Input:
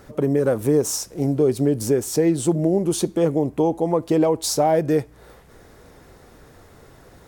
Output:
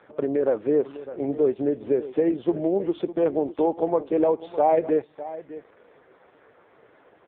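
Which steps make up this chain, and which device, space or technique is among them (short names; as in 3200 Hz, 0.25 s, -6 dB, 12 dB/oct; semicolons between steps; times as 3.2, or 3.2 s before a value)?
1.32–2.48 gate with hold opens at -24 dBFS; satellite phone (BPF 360–3000 Hz; echo 0.605 s -15 dB; AMR-NB 4.75 kbps 8000 Hz)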